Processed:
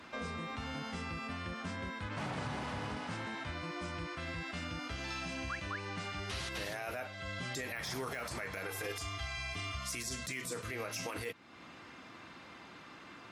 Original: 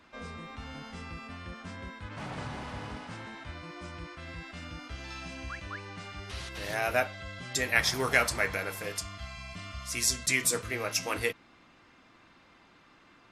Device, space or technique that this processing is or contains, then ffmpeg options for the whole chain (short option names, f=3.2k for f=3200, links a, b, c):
podcast mastering chain: -filter_complex "[0:a]asettb=1/sr,asplit=3[a][b][c];[a]atrim=end=8.664[d];[b]atrim=start=8.66:end=9.77,asetpts=PTS-STARTPTS,afade=t=in:d=0.004:c=qsin,afade=t=out:st=1.106:d=0.004:c=qsin,aecho=1:1:2.5:0.76,atrim=end_sample=48951[e];[c]atrim=start=9.766[f];[d][e]acrossfade=d=0.004:c1=hsin:c2=qsin[g];[g][f]acrossfade=d=0.004:c1=qsin:c2=hsin,highpass=80,deesser=0.7,acompressor=threshold=-48dB:ratio=2,alimiter=level_in=12dB:limit=-24dB:level=0:latency=1:release=35,volume=-12dB,volume=7.5dB" -ar 48000 -c:a libmp3lame -b:a 96k